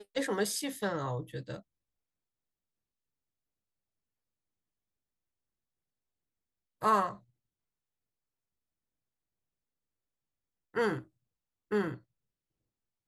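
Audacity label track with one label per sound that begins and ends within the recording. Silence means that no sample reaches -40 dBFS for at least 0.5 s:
6.820000	7.130000	sound
10.750000	11.010000	sound
11.710000	11.950000	sound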